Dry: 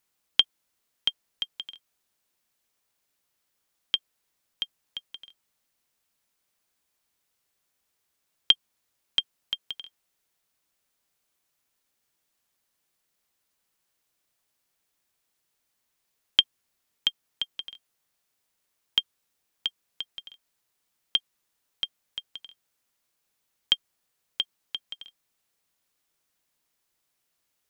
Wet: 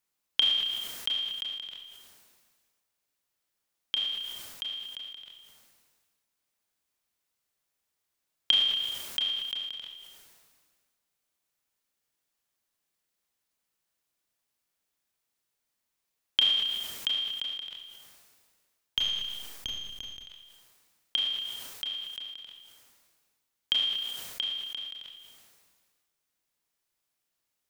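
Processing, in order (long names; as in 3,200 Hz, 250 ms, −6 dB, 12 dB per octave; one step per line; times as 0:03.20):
0:18.98–0:20.27: gain on one half-wave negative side −7 dB
four-comb reverb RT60 0.55 s, combs from 26 ms, DRR 8 dB
level that may fall only so fast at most 34 dB per second
level −5.5 dB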